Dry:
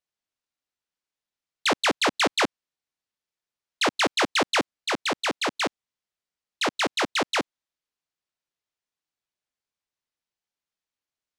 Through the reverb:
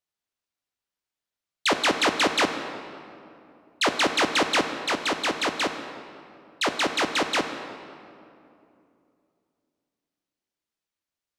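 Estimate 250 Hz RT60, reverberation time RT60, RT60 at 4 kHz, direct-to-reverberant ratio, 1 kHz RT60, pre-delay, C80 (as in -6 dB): 3.2 s, 2.7 s, 1.6 s, 6.5 dB, 2.5 s, 3 ms, 9.0 dB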